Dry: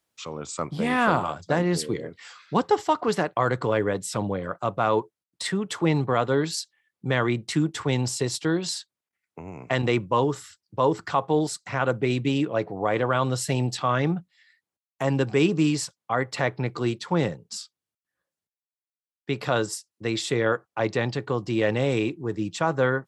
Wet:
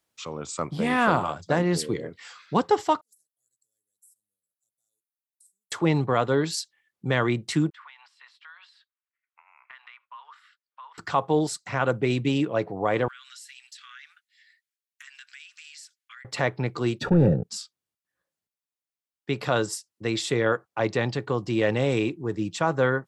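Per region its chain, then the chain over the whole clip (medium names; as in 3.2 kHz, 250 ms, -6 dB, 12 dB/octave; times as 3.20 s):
3.01–5.72 s: inverse Chebyshev high-pass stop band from 2.8 kHz, stop band 70 dB + compression 4:1, threshold -56 dBFS
7.70–10.98 s: steep high-pass 1.1 kHz + compression 4:1, threshold -40 dBFS + distance through air 440 m
13.08–16.25 s: steep high-pass 1.5 kHz 48 dB/octave + compression, threshold -43 dBFS
17.01–17.44 s: waveshaping leveller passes 3 + boxcar filter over 42 samples + level flattener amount 50%
whole clip: none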